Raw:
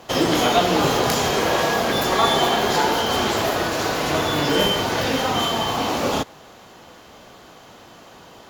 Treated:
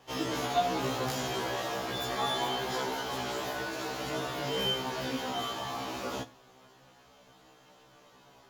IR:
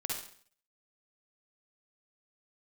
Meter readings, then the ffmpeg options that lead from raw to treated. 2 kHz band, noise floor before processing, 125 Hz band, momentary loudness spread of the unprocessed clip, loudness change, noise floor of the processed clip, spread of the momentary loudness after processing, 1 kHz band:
-13.5 dB, -46 dBFS, -13.0 dB, 5 LU, -13.0 dB, -59 dBFS, 6 LU, -12.5 dB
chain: -filter_complex "[0:a]flanger=delay=6.6:depth=2:regen=44:speed=0.26:shape=sinusoidal,asplit=2[a][b];[1:a]atrim=start_sample=2205[c];[b][c]afir=irnorm=-1:irlink=0,volume=-18.5dB[d];[a][d]amix=inputs=2:normalize=0,afftfilt=real='re*1.73*eq(mod(b,3),0)':imag='im*1.73*eq(mod(b,3),0)':win_size=2048:overlap=0.75,volume=-8dB"

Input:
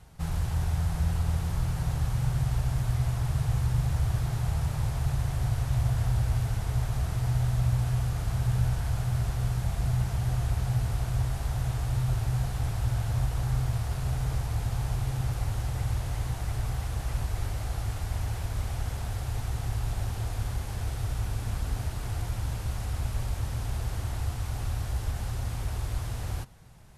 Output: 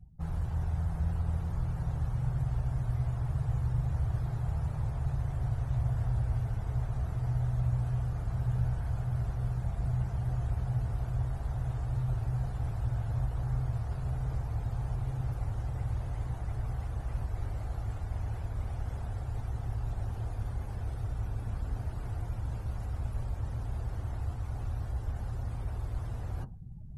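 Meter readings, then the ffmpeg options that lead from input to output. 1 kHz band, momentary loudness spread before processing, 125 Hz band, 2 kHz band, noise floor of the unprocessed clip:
-5.5 dB, 6 LU, -4.0 dB, -9.5 dB, -35 dBFS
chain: -af "afftdn=nr=31:nf=-49,equalizer=f=3.7k:t=o:w=2.8:g=-5.5,areverse,acompressor=mode=upward:threshold=-28dB:ratio=2.5,areverse,volume=-4dB"

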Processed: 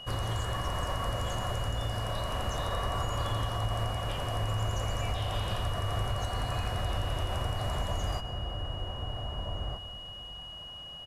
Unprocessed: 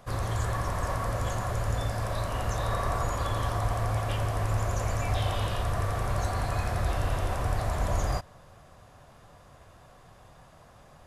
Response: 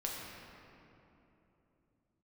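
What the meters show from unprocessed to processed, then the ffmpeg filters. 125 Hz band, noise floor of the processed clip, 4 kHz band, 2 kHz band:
-3.0 dB, -44 dBFS, +7.0 dB, -3.5 dB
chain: -filter_complex "[0:a]asplit=2[a][b];[b]adelay=1574,volume=-8dB,highshelf=f=4k:g=-35.4[c];[a][c]amix=inputs=2:normalize=0,acompressor=threshold=-28dB:ratio=6,aeval=exprs='val(0)+0.00708*sin(2*PI*2900*n/s)':c=same,asplit=2[d][e];[1:a]atrim=start_sample=2205,adelay=129[f];[e][f]afir=irnorm=-1:irlink=0,volume=-15dB[g];[d][g]amix=inputs=2:normalize=0"

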